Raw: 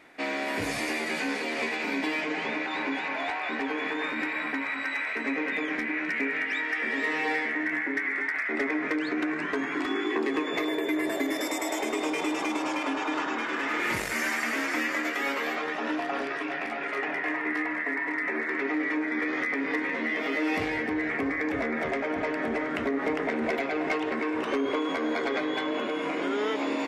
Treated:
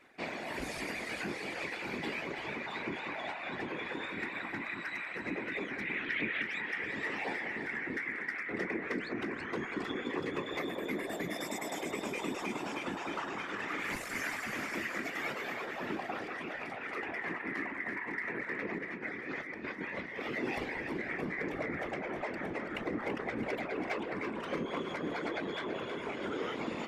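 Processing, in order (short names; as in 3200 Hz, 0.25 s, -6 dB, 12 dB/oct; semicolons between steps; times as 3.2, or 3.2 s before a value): reverb removal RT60 0.93 s; 5.81–6.42 synth low-pass 3400 Hz, resonance Q 6.7; 18.78–20.22 negative-ratio compressor -34 dBFS, ratio -0.5; whisperiser; split-band echo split 1100 Hz, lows 0.19 s, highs 0.332 s, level -8.5 dB; gain -7 dB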